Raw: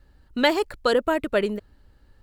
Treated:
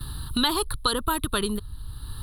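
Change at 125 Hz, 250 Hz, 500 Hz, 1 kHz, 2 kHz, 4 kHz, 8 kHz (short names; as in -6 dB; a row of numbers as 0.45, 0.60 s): +9.0, -2.0, -9.5, -0.5, -6.0, +4.5, +13.5 dB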